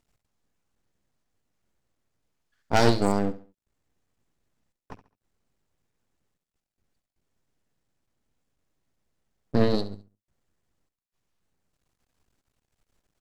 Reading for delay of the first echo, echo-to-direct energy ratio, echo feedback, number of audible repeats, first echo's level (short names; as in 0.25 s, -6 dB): 69 ms, -14.5 dB, 33%, 3, -15.0 dB